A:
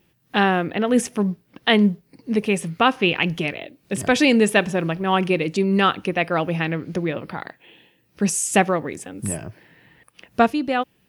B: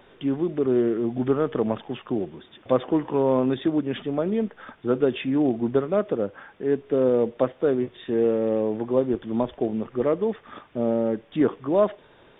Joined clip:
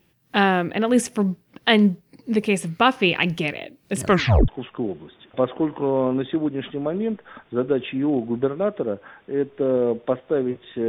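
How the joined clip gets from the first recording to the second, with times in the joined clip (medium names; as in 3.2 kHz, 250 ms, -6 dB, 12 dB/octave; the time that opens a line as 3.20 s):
A
4.02 s: tape stop 0.46 s
4.48 s: go over to B from 1.80 s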